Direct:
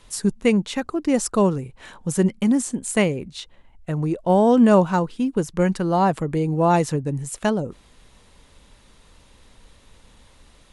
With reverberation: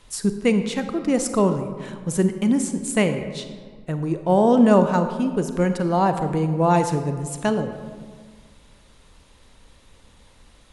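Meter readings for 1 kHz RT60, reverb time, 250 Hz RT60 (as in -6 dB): 1.7 s, 1.7 s, 1.9 s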